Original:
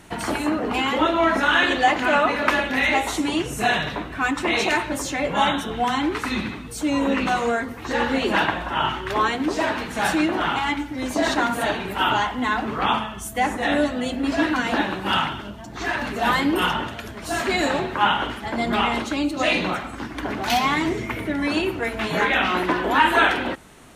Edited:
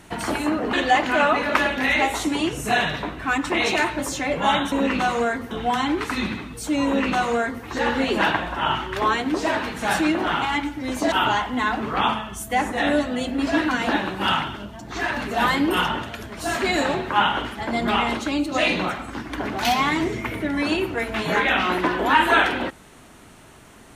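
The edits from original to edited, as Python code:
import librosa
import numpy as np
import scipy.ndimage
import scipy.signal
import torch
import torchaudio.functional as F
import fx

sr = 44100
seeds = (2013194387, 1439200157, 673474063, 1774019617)

y = fx.edit(x, sr, fx.cut(start_s=0.73, length_s=0.93),
    fx.duplicate(start_s=6.99, length_s=0.79, to_s=5.65),
    fx.cut(start_s=11.26, length_s=0.71), tone=tone)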